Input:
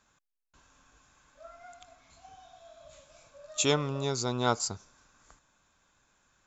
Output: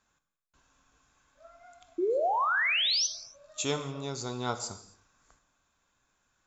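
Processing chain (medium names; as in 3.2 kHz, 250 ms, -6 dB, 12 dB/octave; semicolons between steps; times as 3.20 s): painted sound rise, 1.98–3.07 s, 330–6300 Hz -22 dBFS; gated-style reverb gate 310 ms falling, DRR 8.5 dB; trim -5.5 dB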